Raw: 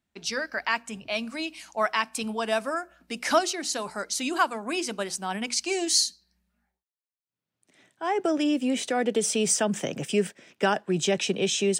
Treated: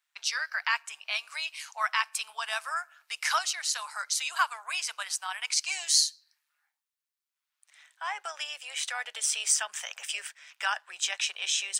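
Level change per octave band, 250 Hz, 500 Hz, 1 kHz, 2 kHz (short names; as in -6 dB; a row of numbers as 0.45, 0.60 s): under -40 dB, -22.0 dB, -4.0 dB, 0.0 dB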